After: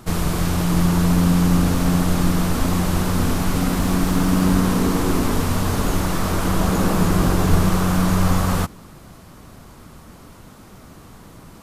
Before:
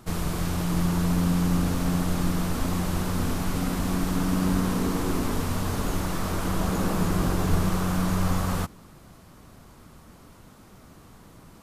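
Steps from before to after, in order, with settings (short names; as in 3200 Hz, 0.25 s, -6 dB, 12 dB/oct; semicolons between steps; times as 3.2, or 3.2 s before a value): 3.48–4.54 crackle 27/s -> 100/s -33 dBFS; gain +7 dB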